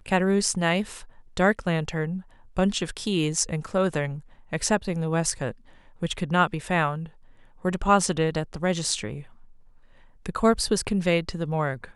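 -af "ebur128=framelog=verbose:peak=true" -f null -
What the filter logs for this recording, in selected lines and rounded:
Integrated loudness:
  I:         -25.5 LUFS
  Threshold: -36.3 LUFS
Loudness range:
  LRA:         1.8 LU
  Threshold: -46.6 LUFS
  LRA low:   -27.4 LUFS
  LRA high:  -25.6 LUFS
True peak:
  Peak:       -6.2 dBFS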